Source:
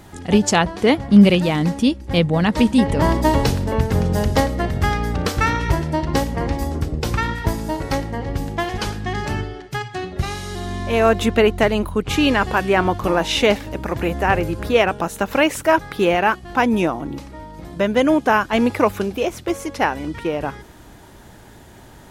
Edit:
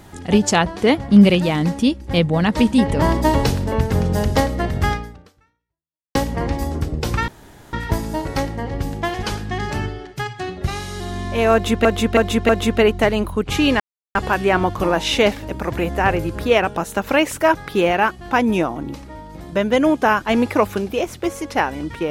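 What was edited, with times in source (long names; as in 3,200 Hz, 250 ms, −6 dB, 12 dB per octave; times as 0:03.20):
0:04.92–0:06.15: fade out exponential
0:07.28: splice in room tone 0.45 s
0:11.08–0:11.40: repeat, 4 plays
0:12.39: splice in silence 0.35 s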